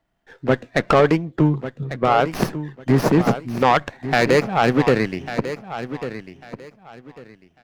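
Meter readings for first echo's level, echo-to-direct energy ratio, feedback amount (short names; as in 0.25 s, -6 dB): -12.0 dB, -12.0 dB, 23%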